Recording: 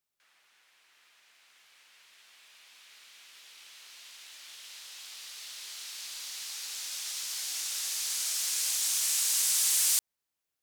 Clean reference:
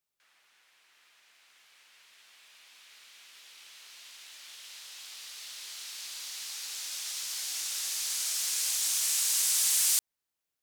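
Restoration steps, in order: clip repair -18 dBFS

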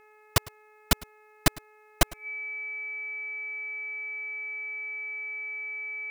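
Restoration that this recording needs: de-hum 426.3 Hz, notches 6; band-stop 2.3 kHz, Q 30; inverse comb 104 ms -22.5 dB

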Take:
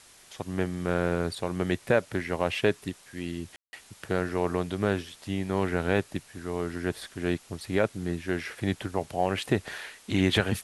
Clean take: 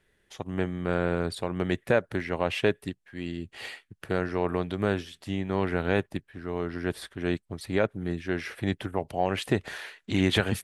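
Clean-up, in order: room tone fill 3.56–3.73 s; noise reduction 13 dB, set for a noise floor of -55 dBFS

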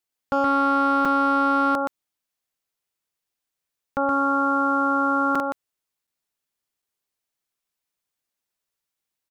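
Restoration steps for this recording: clip repair -13.5 dBFS; interpolate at 1.05/5.35/6.07/6.82 s, 4.7 ms; inverse comb 122 ms -4 dB

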